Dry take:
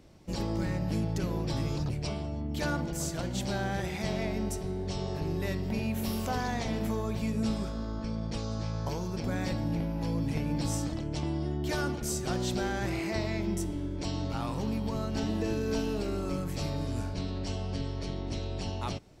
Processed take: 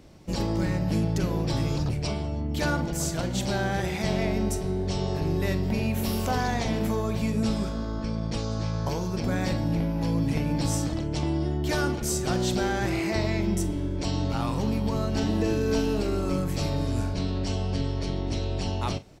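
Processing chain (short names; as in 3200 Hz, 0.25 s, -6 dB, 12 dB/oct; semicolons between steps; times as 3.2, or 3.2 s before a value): doubler 43 ms -14 dB; gain +5 dB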